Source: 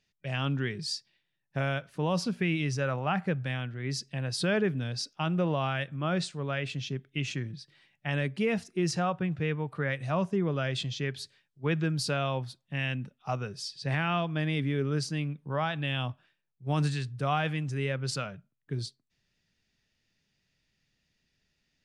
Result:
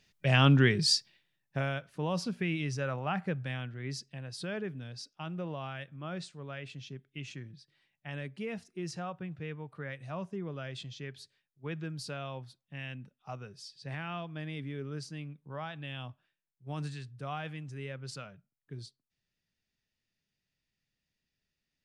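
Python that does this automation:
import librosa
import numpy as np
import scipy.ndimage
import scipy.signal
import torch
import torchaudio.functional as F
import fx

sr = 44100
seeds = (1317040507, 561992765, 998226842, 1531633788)

y = fx.gain(x, sr, db=fx.line((0.95, 8.0), (1.73, -4.0), (3.82, -4.0), (4.25, -10.0)))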